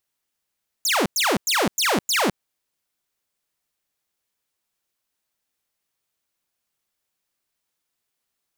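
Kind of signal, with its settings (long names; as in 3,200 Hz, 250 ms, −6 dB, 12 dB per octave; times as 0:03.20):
repeated falling chirps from 7,600 Hz, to 160 Hz, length 0.21 s saw, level −15 dB, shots 5, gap 0.10 s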